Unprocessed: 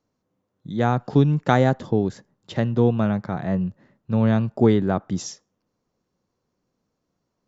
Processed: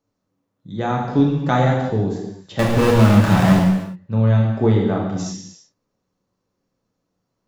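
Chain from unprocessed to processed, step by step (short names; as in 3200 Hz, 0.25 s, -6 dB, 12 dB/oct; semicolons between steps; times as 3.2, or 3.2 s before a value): 2.59–3.59 power-law curve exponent 0.35; non-linear reverb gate 0.38 s falling, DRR -2.5 dB; gain -3 dB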